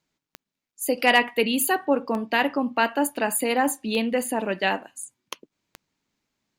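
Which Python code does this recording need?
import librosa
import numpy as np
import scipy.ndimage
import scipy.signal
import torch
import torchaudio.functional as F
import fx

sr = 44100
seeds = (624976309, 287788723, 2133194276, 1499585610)

y = fx.fix_declip(x, sr, threshold_db=-7.5)
y = fx.fix_declick_ar(y, sr, threshold=10.0)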